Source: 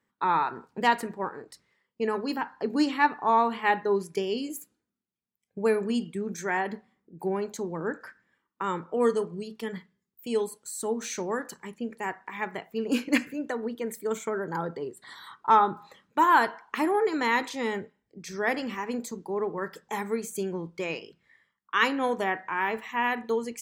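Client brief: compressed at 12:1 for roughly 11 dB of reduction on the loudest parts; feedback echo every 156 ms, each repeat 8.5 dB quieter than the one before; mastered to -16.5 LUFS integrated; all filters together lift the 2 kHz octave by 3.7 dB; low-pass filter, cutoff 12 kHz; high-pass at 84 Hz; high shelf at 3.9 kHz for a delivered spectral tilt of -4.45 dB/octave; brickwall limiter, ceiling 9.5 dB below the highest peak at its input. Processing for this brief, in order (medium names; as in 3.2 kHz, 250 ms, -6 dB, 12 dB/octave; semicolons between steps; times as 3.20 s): high-pass 84 Hz; low-pass 12 kHz; peaking EQ 2 kHz +5 dB; treble shelf 3.9 kHz -3 dB; compression 12:1, threshold -25 dBFS; peak limiter -22 dBFS; feedback delay 156 ms, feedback 38%, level -8.5 dB; trim +16.5 dB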